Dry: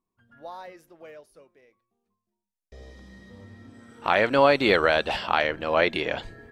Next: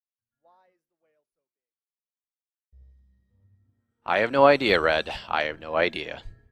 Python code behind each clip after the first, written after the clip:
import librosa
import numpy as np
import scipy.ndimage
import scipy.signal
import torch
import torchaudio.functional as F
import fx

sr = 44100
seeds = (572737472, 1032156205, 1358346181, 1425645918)

y = fx.band_widen(x, sr, depth_pct=100)
y = y * librosa.db_to_amplitude(-3.0)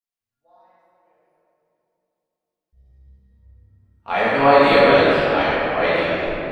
y = fx.room_shoebox(x, sr, seeds[0], volume_m3=180.0, walls='hard', distance_m=1.7)
y = y * librosa.db_to_amplitude(-5.0)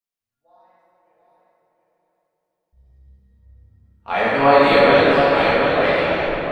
y = fx.echo_feedback(x, sr, ms=716, feedback_pct=20, wet_db=-6.5)